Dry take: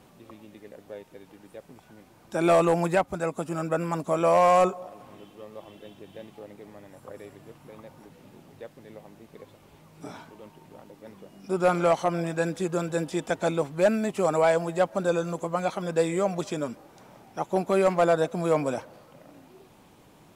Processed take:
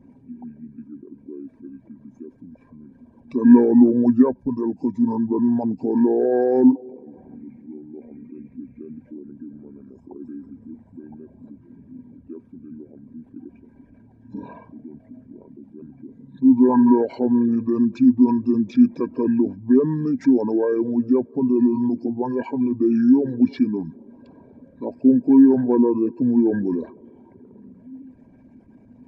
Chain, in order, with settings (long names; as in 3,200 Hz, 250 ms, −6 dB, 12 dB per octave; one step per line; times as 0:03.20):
spectral envelope exaggerated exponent 2
speed change −30%
hollow resonant body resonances 250/960/1,600/2,300 Hz, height 18 dB, ringing for 70 ms
level −2 dB